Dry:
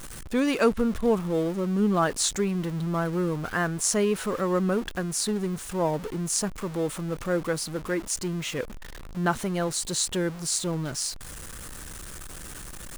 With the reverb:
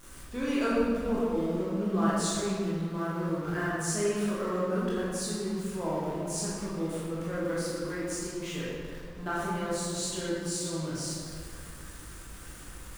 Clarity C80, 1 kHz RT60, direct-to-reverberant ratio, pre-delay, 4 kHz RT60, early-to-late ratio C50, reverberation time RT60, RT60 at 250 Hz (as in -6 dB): 0.0 dB, 2.0 s, -8.5 dB, 16 ms, 1.3 s, -3.0 dB, 2.1 s, 2.4 s